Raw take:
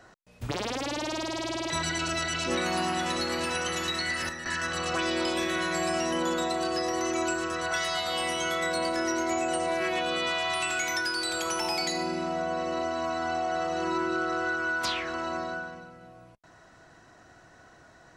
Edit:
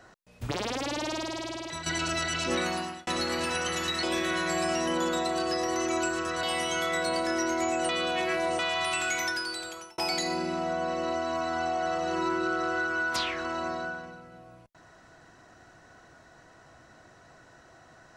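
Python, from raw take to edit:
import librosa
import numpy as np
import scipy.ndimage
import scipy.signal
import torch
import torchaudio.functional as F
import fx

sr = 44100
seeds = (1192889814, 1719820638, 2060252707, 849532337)

y = fx.edit(x, sr, fx.fade_out_to(start_s=1.09, length_s=0.77, floor_db=-9.5),
    fx.fade_out_span(start_s=2.62, length_s=0.45),
    fx.cut(start_s=4.03, length_s=1.25),
    fx.cut(start_s=7.68, length_s=0.44),
    fx.reverse_span(start_s=9.58, length_s=0.7),
    fx.fade_out_span(start_s=10.89, length_s=0.78), tone=tone)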